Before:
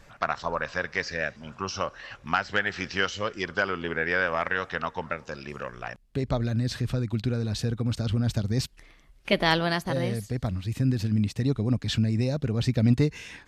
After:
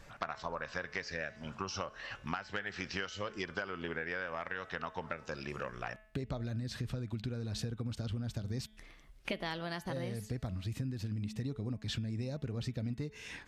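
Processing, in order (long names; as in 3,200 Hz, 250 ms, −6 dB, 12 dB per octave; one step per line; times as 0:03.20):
hum removal 215.9 Hz, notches 17
downward compressor 12 to 1, threshold −32 dBFS, peak gain reduction 17 dB
level −2 dB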